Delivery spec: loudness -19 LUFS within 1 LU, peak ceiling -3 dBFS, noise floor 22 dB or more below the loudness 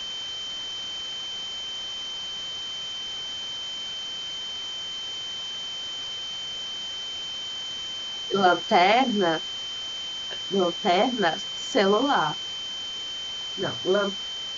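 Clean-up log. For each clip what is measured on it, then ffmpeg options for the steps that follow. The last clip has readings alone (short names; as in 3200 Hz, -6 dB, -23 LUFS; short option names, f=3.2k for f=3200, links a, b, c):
steady tone 3100 Hz; tone level -31 dBFS; noise floor -34 dBFS; noise floor target -49 dBFS; loudness -26.5 LUFS; peak -6.5 dBFS; loudness target -19.0 LUFS
-> -af "bandreject=f=3.1k:w=30"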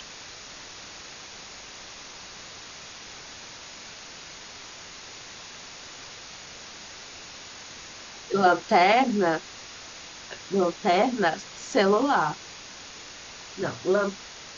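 steady tone none; noise floor -44 dBFS; noise floor target -46 dBFS
-> -af "afftdn=nr=6:nf=-44"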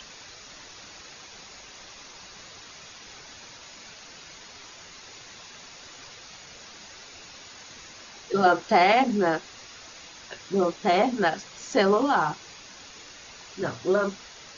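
noise floor -47 dBFS; loudness -24.0 LUFS; peak -7.0 dBFS; loudness target -19.0 LUFS
-> -af "volume=5dB,alimiter=limit=-3dB:level=0:latency=1"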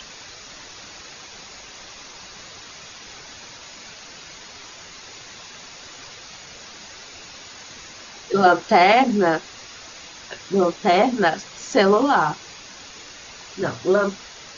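loudness -19.0 LUFS; peak -3.0 dBFS; noise floor -42 dBFS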